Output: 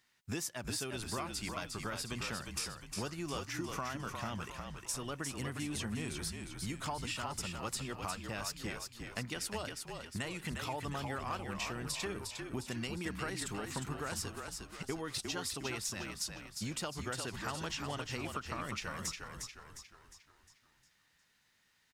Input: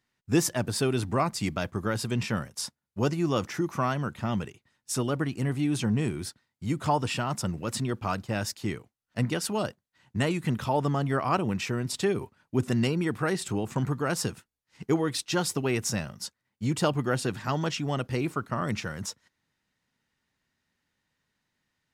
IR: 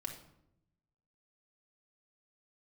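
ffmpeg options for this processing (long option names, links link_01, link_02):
-filter_complex "[0:a]tiltshelf=frequency=860:gain=-5.5,acompressor=threshold=-40dB:ratio=6,asplit=7[link_01][link_02][link_03][link_04][link_05][link_06][link_07];[link_02]adelay=356,afreqshift=-45,volume=-5dB[link_08];[link_03]adelay=712,afreqshift=-90,volume=-11.7dB[link_09];[link_04]adelay=1068,afreqshift=-135,volume=-18.5dB[link_10];[link_05]adelay=1424,afreqshift=-180,volume=-25.2dB[link_11];[link_06]adelay=1780,afreqshift=-225,volume=-32dB[link_12];[link_07]adelay=2136,afreqshift=-270,volume=-38.7dB[link_13];[link_01][link_08][link_09][link_10][link_11][link_12][link_13]amix=inputs=7:normalize=0,volume=2dB"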